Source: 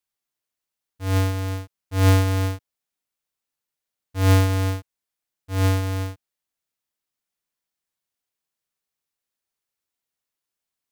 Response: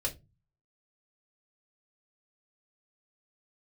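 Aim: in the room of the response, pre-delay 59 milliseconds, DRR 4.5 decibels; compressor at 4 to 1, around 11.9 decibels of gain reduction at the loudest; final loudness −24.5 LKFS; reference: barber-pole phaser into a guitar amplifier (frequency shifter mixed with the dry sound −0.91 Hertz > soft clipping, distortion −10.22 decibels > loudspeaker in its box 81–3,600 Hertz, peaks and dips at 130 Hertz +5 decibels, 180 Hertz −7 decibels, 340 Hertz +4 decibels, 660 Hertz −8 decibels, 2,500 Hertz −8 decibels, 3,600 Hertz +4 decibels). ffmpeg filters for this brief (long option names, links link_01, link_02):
-filter_complex "[0:a]acompressor=threshold=-29dB:ratio=4,asplit=2[link_01][link_02];[1:a]atrim=start_sample=2205,adelay=59[link_03];[link_02][link_03]afir=irnorm=-1:irlink=0,volume=-8dB[link_04];[link_01][link_04]amix=inputs=2:normalize=0,asplit=2[link_05][link_06];[link_06]afreqshift=-0.91[link_07];[link_05][link_07]amix=inputs=2:normalize=1,asoftclip=threshold=-31.5dB,highpass=81,equalizer=frequency=130:width_type=q:width=4:gain=5,equalizer=frequency=180:width_type=q:width=4:gain=-7,equalizer=frequency=340:width_type=q:width=4:gain=4,equalizer=frequency=660:width_type=q:width=4:gain=-8,equalizer=frequency=2500:width_type=q:width=4:gain=-8,equalizer=frequency=3600:width_type=q:width=4:gain=4,lowpass=frequency=3600:width=0.5412,lowpass=frequency=3600:width=1.3066,volume=14.5dB"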